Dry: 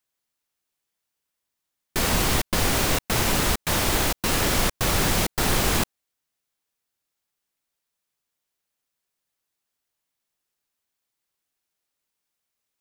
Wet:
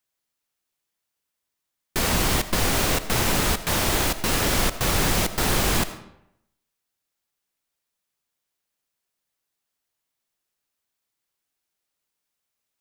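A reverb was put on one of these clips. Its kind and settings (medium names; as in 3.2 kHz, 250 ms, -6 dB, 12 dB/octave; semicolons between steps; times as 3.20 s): algorithmic reverb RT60 0.78 s, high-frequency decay 0.75×, pre-delay 40 ms, DRR 12.5 dB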